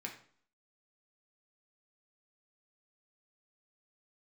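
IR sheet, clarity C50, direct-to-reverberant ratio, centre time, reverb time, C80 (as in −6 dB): 9.0 dB, 0.0 dB, 18 ms, 0.50 s, 12.5 dB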